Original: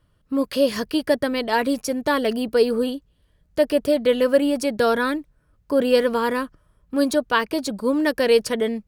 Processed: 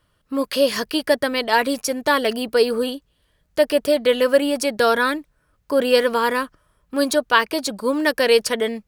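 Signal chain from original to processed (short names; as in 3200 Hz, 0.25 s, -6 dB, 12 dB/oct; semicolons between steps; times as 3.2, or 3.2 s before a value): low shelf 420 Hz -10.5 dB; gain +5.5 dB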